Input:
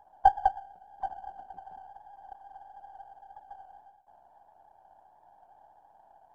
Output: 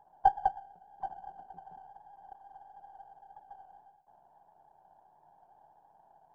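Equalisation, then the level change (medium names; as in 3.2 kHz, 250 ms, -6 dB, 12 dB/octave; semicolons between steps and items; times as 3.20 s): fifteen-band graphic EQ 160 Hz +12 dB, 400 Hz +7 dB, 1 kHz +4 dB; -6.5 dB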